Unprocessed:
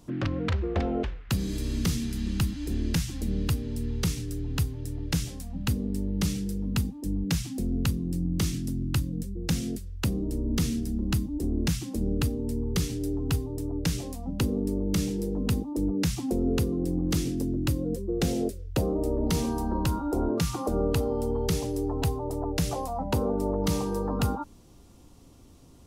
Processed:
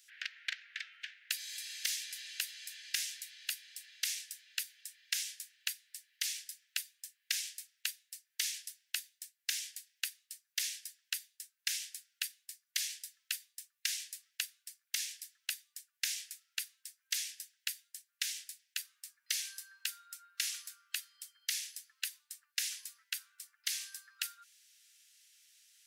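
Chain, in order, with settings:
Butterworth high-pass 1,600 Hz 72 dB per octave
soft clipping −19.5 dBFS, distortion −21 dB
level +1 dB

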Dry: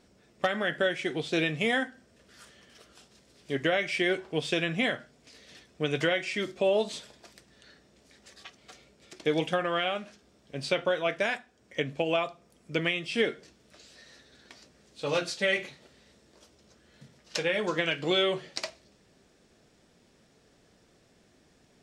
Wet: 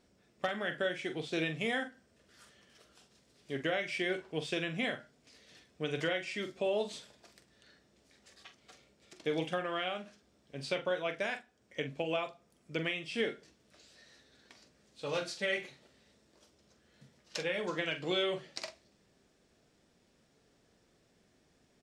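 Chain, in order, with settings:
double-tracking delay 44 ms −10 dB
level −7 dB

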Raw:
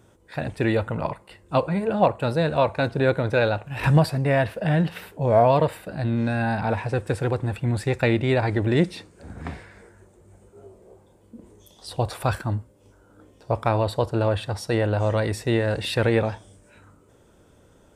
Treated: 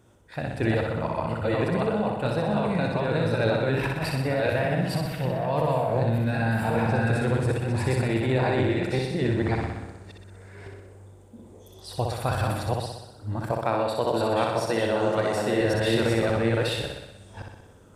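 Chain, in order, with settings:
delay that plays each chunk backwards 562 ms, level 0 dB
0:13.51–0:15.61: high-pass filter 180 Hz 12 dB per octave
compressor whose output falls as the input rises −20 dBFS, ratio −1
flutter between parallel walls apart 10.6 metres, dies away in 0.95 s
level −5 dB

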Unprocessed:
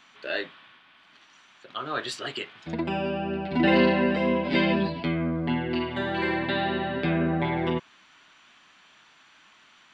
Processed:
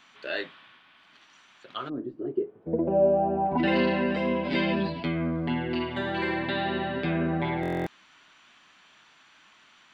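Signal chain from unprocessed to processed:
in parallel at −1 dB: brickwall limiter −19.5 dBFS, peak gain reduction 10.5 dB
0:01.88–0:03.57: on the sum: low-pass with resonance 260 Hz → 900 Hz, resonance Q 5.3
buffer that repeats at 0:07.61, samples 1,024, times 10
level −6.5 dB

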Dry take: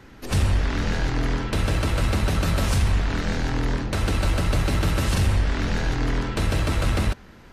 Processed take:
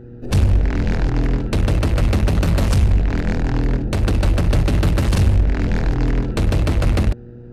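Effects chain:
adaptive Wiener filter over 41 samples
hum with harmonics 120 Hz, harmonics 4, −45 dBFS
level +6 dB

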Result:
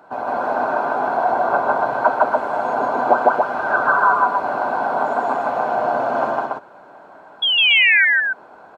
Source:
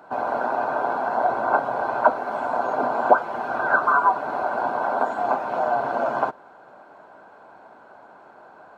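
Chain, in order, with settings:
sound drawn into the spectrogram fall, 0:07.42–0:08.05, 1,500–3,400 Hz −17 dBFS
on a send: loudspeakers that aren't time-aligned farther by 53 metres 0 dB, 97 metres −3 dB

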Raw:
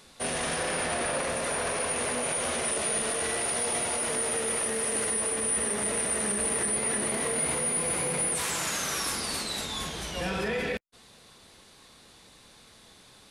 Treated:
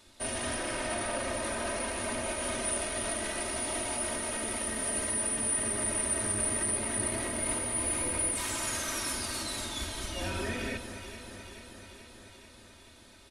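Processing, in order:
sub-octave generator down 1 octave, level +2 dB
comb filter 3.2 ms, depth 87%
delay that swaps between a low-pass and a high-pass 217 ms, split 1,700 Hz, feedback 82%, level −8 dB
level −7 dB

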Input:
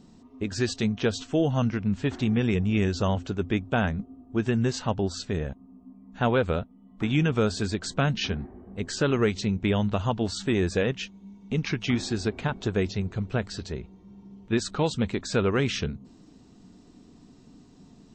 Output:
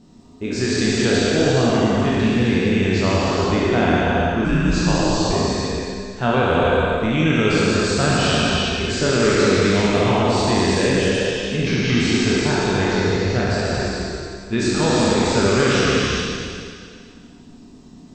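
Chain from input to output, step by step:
peak hold with a decay on every bin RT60 2.20 s
reverb whose tail is shaped and stops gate 470 ms flat, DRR −3.5 dB
0:04.44–0:05.33: frequency shifter −74 Hz

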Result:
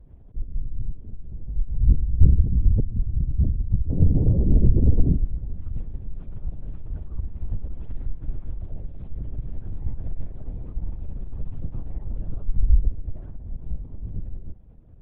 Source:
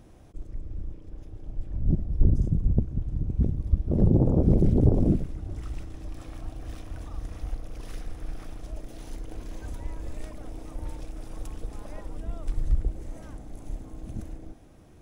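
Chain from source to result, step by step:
spectral tilt −4 dB per octave
linear-prediction vocoder at 8 kHz whisper
level −12.5 dB

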